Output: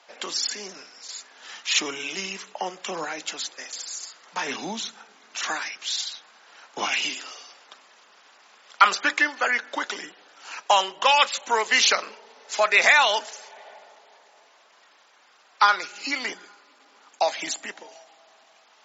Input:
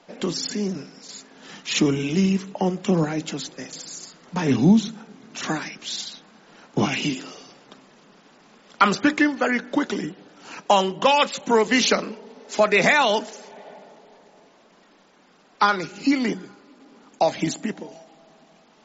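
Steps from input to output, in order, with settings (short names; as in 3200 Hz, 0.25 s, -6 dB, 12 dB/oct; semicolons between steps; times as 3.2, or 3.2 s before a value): HPF 890 Hz 12 dB/oct; gain +2.5 dB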